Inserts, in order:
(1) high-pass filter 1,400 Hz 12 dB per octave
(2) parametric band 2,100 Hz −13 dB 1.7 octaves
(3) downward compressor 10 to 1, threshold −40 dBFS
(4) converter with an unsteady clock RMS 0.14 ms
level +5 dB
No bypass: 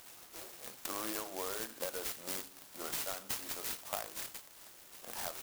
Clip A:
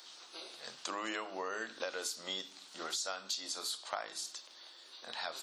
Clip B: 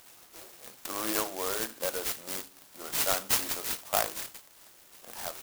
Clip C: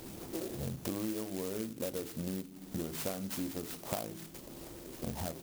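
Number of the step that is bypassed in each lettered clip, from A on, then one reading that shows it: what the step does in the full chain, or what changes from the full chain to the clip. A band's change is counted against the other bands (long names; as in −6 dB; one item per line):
4, 4 kHz band +5.0 dB
3, average gain reduction 4.0 dB
1, 125 Hz band +20.5 dB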